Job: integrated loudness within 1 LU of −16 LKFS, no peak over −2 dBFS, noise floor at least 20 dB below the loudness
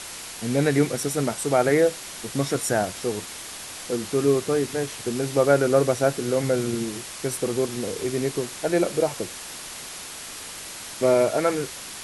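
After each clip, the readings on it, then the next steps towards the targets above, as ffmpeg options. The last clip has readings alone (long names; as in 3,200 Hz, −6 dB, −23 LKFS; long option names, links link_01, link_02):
background noise floor −38 dBFS; target noise floor −45 dBFS; integrated loudness −24.5 LKFS; sample peak −6.5 dBFS; target loudness −16.0 LKFS
→ -af "afftdn=noise_reduction=7:noise_floor=-38"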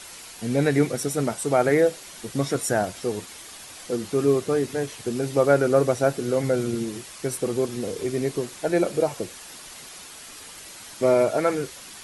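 background noise floor −42 dBFS; target noise floor −44 dBFS
→ -af "afftdn=noise_reduction=6:noise_floor=-42"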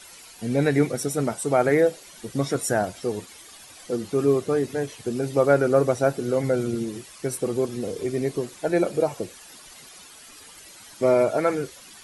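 background noise floor −47 dBFS; integrated loudness −24.0 LKFS; sample peak −7.0 dBFS; target loudness −16.0 LKFS
→ -af "volume=8dB,alimiter=limit=-2dB:level=0:latency=1"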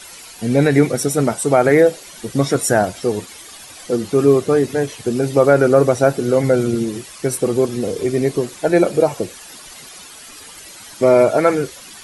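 integrated loudness −16.5 LKFS; sample peak −2.0 dBFS; background noise floor −39 dBFS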